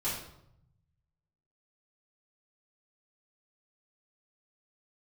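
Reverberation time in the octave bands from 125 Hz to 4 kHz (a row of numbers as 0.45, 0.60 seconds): 1.7, 1.1, 0.80, 0.75, 0.60, 0.55 seconds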